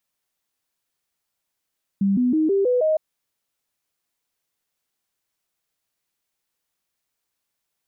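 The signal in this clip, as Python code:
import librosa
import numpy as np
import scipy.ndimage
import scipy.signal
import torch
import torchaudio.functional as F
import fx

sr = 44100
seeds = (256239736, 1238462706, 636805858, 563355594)

y = fx.stepped_sweep(sr, from_hz=197.0, direction='up', per_octave=3, tones=6, dwell_s=0.16, gap_s=0.0, level_db=-16.0)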